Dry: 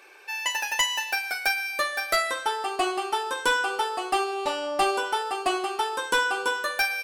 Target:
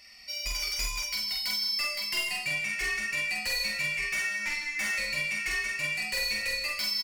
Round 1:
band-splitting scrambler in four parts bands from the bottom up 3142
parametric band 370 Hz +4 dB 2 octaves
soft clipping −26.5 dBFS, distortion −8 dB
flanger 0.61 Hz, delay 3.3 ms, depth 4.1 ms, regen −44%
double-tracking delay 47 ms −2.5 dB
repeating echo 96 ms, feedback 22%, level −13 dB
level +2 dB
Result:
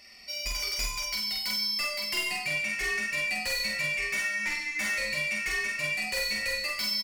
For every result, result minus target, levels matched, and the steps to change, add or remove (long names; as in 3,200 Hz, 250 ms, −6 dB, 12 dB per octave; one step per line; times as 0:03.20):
echo 61 ms early; 500 Hz band +4.5 dB
change: repeating echo 157 ms, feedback 22%, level −13 dB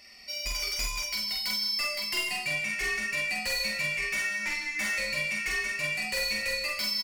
500 Hz band +5.0 dB
change: parametric band 370 Hz −4 dB 2 octaves